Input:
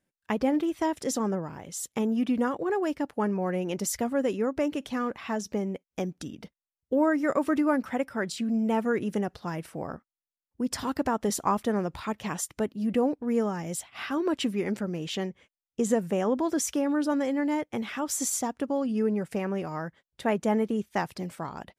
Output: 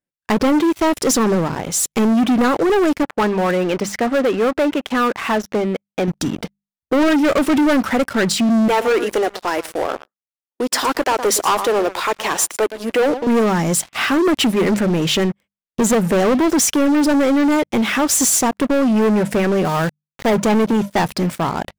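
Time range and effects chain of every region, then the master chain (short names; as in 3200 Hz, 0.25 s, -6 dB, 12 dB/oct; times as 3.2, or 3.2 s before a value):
3.03–6.08 LPF 1900 Hz + tilt +3 dB/oct
8.68–13.27 HPF 350 Hz 24 dB/oct + echo 0.115 s -17 dB
15.24–15.82 notch 440 Hz + decimation joined by straight lines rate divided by 4×
19.65–20.35 brick-wall FIR low-pass 2300 Hz + notch 300 Hz, Q 7.1 + sample gate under -43.5 dBFS
whole clip: notches 50/100/150/200 Hz; sample leveller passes 5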